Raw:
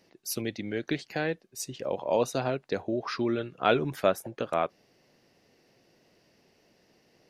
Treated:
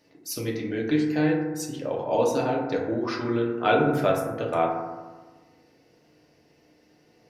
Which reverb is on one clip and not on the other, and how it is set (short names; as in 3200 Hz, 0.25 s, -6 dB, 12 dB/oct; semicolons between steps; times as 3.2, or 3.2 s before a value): FDN reverb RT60 1.3 s, low-frequency decay 1.25×, high-frequency decay 0.3×, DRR -2.5 dB; gain -1.5 dB